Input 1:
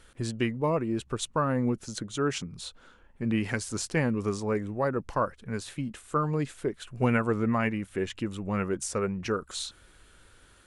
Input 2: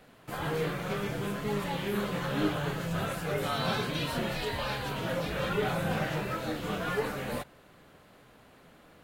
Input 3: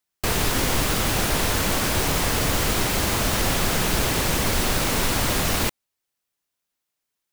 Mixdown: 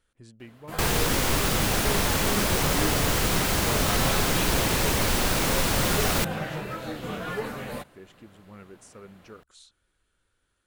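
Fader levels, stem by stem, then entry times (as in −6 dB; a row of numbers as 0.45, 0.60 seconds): −17.5, −0.5, −2.0 decibels; 0.00, 0.40, 0.55 seconds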